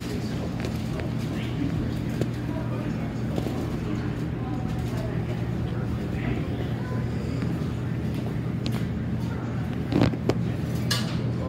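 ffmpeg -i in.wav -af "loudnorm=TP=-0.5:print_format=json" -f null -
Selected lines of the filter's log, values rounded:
"input_i" : "-28.1",
"input_tp" : "-7.2",
"input_lra" : "2.1",
"input_thresh" : "-38.1",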